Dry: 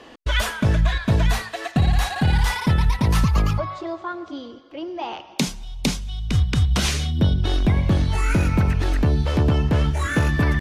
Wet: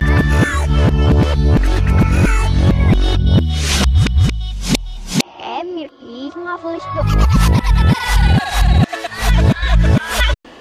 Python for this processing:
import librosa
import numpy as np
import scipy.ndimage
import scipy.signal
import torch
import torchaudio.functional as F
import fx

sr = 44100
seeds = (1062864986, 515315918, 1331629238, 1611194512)

y = x[::-1].copy()
y = F.gain(torch.from_numpy(y), 6.5).numpy()